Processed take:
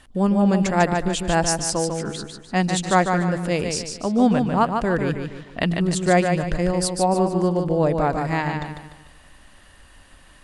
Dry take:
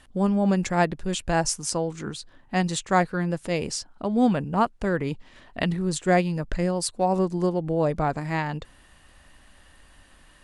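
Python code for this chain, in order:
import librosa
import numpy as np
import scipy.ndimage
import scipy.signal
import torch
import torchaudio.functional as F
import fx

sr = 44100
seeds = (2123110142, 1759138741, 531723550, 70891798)

y = fx.echo_feedback(x, sr, ms=148, feedback_pct=38, wet_db=-5.5)
y = y * librosa.db_to_amplitude(3.0)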